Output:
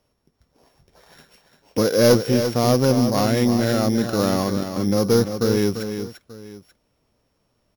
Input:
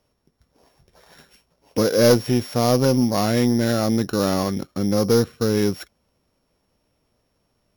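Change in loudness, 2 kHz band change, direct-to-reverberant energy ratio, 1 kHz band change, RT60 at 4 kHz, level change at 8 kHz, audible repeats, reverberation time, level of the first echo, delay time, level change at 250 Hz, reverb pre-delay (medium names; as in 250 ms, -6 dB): +0.5 dB, +0.5 dB, no reverb, +0.5 dB, no reverb, +0.5 dB, 2, no reverb, -8.5 dB, 343 ms, +0.5 dB, no reverb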